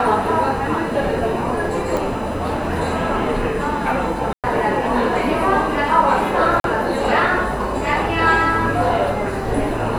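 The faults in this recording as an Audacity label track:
1.970000	1.970000	pop
4.330000	4.440000	dropout 107 ms
6.600000	6.640000	dropout 42 ms

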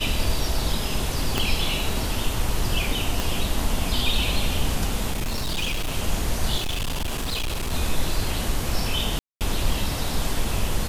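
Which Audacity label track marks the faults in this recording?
1.380000	1.380000	pop
3.200000	3.200000	pop
5.110000	5.960000	clipped -22 dBFS
6.560000	7.730000	clipped -23 dBFS
9.190000	9.410000	dropout 218 ms

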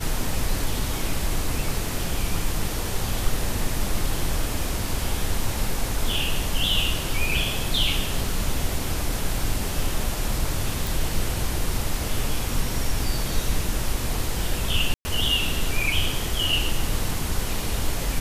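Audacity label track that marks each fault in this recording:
10.870000	10.870000	pop
14.940000	15.050000	dropout 110 ms

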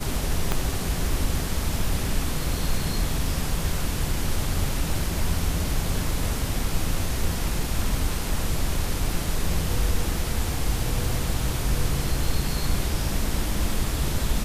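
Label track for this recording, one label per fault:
0.520000	0.520000	pop -9 dBFS

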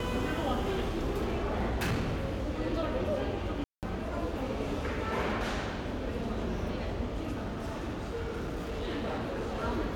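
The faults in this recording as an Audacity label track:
0.610000	2.740000	clipped -26.5 dBFS
3.640000	3.830000	dropout 188 ms
7.320000	9.640000	clipped -31 dBFS

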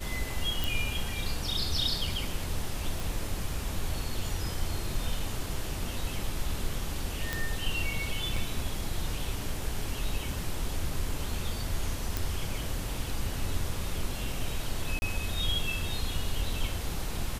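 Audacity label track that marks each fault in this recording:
0.640000	0.640000	pop
3.000000	3.000000	pop
7.330000	7.330000	pop -14 dBFS
8.360000	8.360000	dropout 4.1 ms
12.170000	12.170000	pop
14.990000	15.020000	dropout 30 ms

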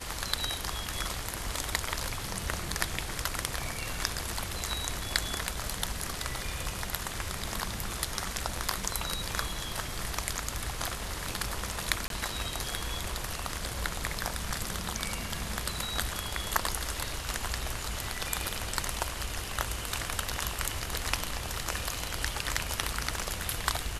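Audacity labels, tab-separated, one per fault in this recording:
12.080000	12.100000	dropout 22 ms

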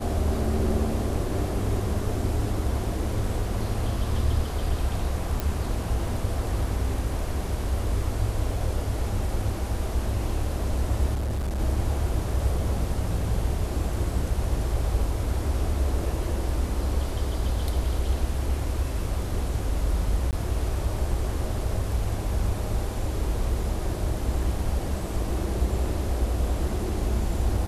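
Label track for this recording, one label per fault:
5.400000	5.400000	pop
11.140000	11.590000	clipped -24.5 dBFS
20.310000	20.330000	dropout 18 ms

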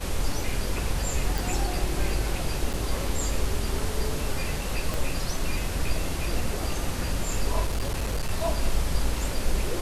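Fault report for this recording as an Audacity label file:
1.380000	1.380000	pop
2.730000	2.740000	dropout 7.6 ms
4.940000	4.940000	pop
7.660000	8.310000	clipped -22.5 dBFS

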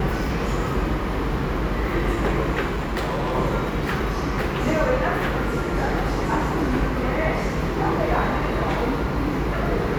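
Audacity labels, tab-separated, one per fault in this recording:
2.650000	3.360000	clipped -21 dBFS

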